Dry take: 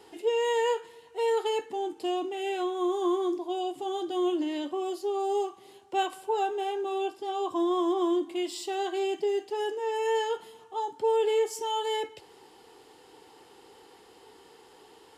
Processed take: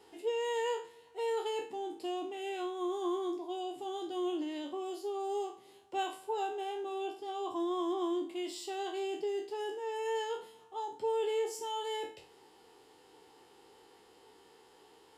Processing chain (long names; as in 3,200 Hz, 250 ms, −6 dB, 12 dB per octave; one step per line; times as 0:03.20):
peak hold with a decay on every bin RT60 0.39 s
level −7.5 dB